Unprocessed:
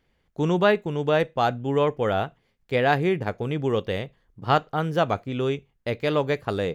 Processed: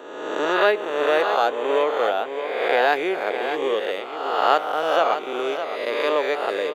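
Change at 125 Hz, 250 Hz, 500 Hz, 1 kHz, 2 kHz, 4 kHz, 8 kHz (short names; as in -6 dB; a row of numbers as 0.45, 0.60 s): under -25 dB, -5.0 dB, +3.0 dB, +4.5 dB, +5.5 dB, +5.0 dB, n/a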